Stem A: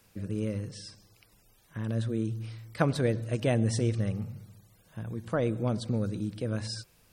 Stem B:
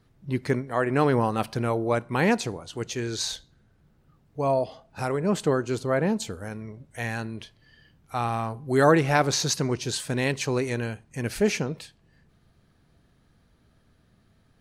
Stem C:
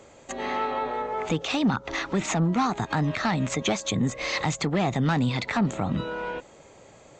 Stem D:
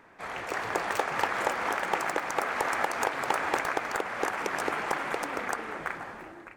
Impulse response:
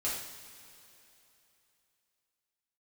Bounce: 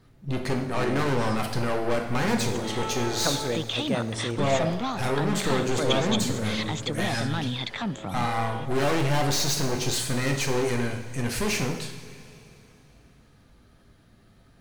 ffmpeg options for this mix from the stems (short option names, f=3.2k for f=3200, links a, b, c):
-filter_complex "[0:a]lowshelf=f=160:g=-10.5,adelay=450,volume=-1.5dB,asplit=2[a][b];[b]volume=-13dB[c];[1:a]aeval=exprs='(tanh(35.5*val(0)+0.5)-tanh(0.5))/35.5':c=same,volume=3dB,asplit=2[d][e];[e]volume=-3dB[f];[2:a]equalizer=f=3.4k:t=o:w=0.34:g=13,adelay=2250,volume=-6.5dB[g];[3:a]acompressor=threshold=-32dB:ratio=6,adelay=1700,volume=-15dB[h];[4:a]atrim=start_sample=2205[i];[c][f]amix=inputs=2:normalize=0[j];[j][i]afir=irnorm=-1:irlink=0[k];[a][d][g][h][k]amix=inputs=5:normalize=0"